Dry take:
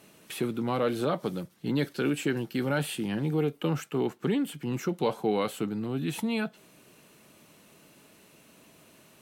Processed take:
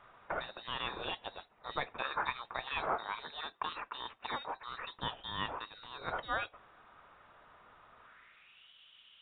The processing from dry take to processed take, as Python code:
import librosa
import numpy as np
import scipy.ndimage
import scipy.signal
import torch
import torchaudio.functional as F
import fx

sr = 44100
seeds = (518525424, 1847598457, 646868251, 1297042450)

y = fx.filter_sweep_bandpass(x, sr, from_hz=3100.0, to_hz=980.0, start_s=7.99, end_s=8.73, q=3.4)
y = fx.freq_invert(y, sr, carrier_hz=4000)
y = y * 10.0 ** (8.5 / 20.0)